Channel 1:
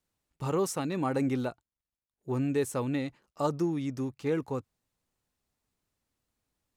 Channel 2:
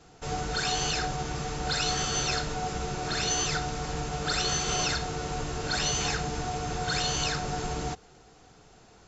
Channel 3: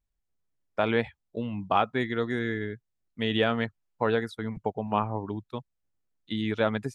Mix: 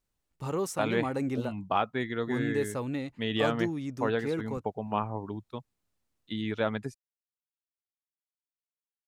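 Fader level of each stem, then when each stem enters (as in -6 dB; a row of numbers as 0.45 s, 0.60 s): -2.5 dB, mute, -3.5 dB; 0.00 s, mute, 0.00 s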